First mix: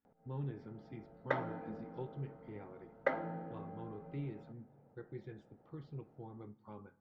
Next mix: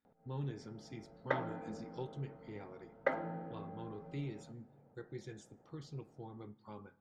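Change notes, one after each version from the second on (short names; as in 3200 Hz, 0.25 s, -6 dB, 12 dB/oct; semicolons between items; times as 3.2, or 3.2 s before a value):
speech: remove air absorption 400 m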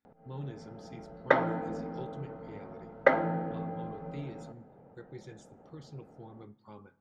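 background +11.0 dB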